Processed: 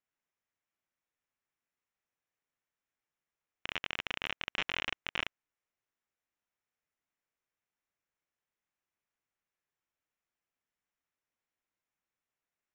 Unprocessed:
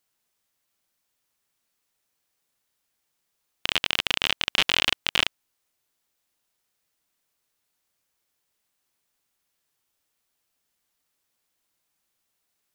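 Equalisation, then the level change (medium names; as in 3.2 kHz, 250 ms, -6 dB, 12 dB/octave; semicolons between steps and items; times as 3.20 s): rippled Chebyshev low-pass 7.4 kHz, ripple 6 dB; treble shelf 2.6 kHz -11 dB; peaking EQ 4.7 kHz -14 dB 0.23 oct; -4.5 dB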